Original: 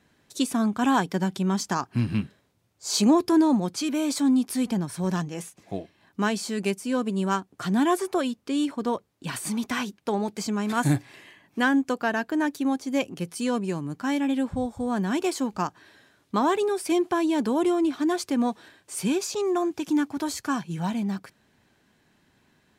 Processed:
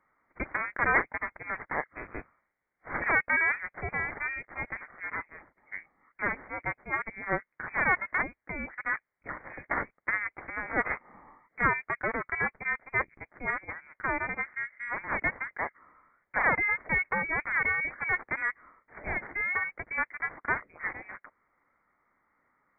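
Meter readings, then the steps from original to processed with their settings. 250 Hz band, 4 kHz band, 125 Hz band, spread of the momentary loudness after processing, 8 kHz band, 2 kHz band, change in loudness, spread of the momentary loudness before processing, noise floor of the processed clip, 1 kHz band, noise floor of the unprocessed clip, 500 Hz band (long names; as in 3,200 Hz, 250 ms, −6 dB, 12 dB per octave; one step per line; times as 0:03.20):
−21.0 dB, below −40 dB, −13.0 dB, 14 LU, below −40 dB, +7.0 dB, −4.5 dB, 8 LU, −81 dBFS, −4.0 dB, −66 dBFS, −11.5 dB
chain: harmonic generator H 3 −21 dB, 4 −6 dB, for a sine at −11 dBFS
Butterworth high-pass 750 Hz 36 dB per octave
voice inversion scrambler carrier 2,900 Hz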